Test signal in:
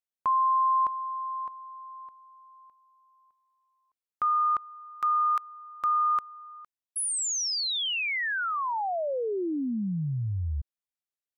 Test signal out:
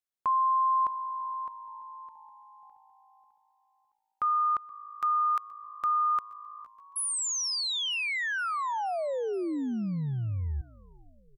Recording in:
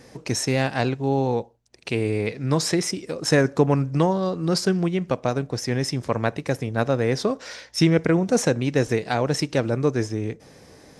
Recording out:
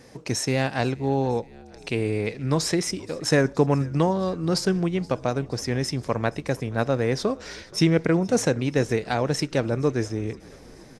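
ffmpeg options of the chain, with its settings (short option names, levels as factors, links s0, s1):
-filter_complex "[0:a]asplit=6[s0][s1][s2][s3][s4][s5];[s1]adelay=474,afreqshift=-54,volume=0.0668[s6];[s2]adelay=948,afreqshift=-108,volume=0.0422[s7];[s3]adelay=1422,afreqshift=-162,volume=0.0266[s8];[s4]adelay=1896,afreqshift=-216,volume=0.0168[s9];[s5]adelay=2370,afreqshift=-270,volume=0.0105[s10];[s0][s6][s7][s8][s9][s10]amix=inputs=6:normalize=0,volume=0.841"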